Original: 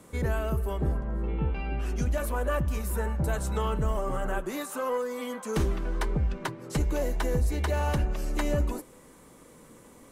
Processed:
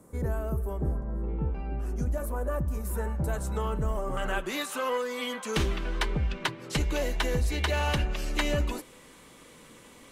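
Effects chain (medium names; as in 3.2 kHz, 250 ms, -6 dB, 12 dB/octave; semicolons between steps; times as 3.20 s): peaking EQ 3.1 kHz -13.5 dB 1.8 oct, from 2.85 s -4 dB, from 4.17 s +12 dB; trim -1.5 dB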